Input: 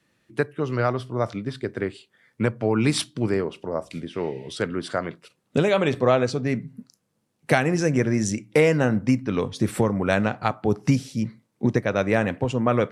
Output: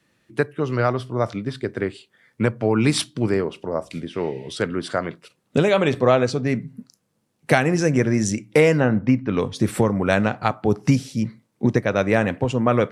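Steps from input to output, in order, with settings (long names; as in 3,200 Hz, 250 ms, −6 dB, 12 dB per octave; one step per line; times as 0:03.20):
0:08.80–0:09.37: low-pass filter 3,100 Hz 12 dB per octave
level +2.5 dB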